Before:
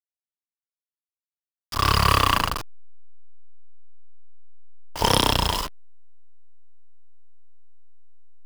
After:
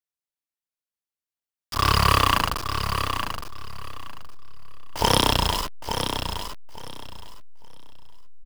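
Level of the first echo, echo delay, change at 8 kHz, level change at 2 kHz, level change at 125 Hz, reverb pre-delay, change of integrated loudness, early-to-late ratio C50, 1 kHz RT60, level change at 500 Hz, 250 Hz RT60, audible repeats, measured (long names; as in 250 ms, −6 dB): −7.5 dB, 866 ms, +0.5 dB, +1.0 dB, +1.0 dB, no reverb audible, −2.0 dB, no reverb audible, no reverb audible, +0.5 dB, no reverb audible, 3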